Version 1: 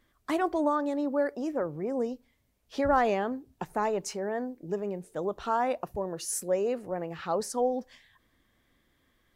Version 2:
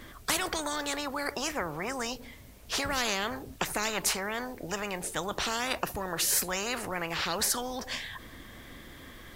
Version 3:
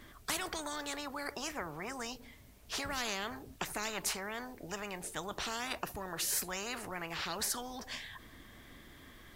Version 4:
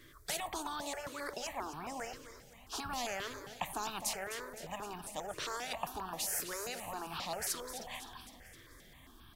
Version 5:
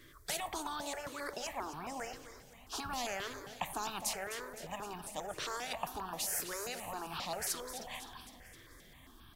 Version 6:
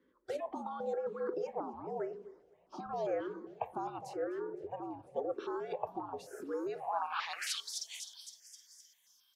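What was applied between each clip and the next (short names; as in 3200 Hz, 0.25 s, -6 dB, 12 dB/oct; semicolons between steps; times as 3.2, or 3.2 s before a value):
spectral compressor 4:1
notch 520 Hz, Q 12; gain -7 dB
on a send: feedback echo 0.257 s, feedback 59%, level -11 dB; on the sum: dynamic EQ 770 Hz, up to +6 dB, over -54 dBFS, Q 1; step phaser 7.5 Hz 210–2000 Hz; gain -1 dB
reverb RT60 2.2 s, pre-delay 3 ms, DRR 19 dB
frequency shift -73 Hz; band-pass sweep 450 Hz -> 5900 Hz, 6.66–7.81; spectral noise reduction 12 dB; gain +11.5 dB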